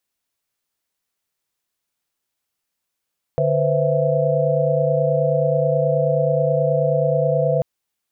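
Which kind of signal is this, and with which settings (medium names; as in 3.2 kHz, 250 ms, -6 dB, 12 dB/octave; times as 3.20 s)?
chord D3/B4/C5/E5 sine, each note -21 dBFS 4.24 s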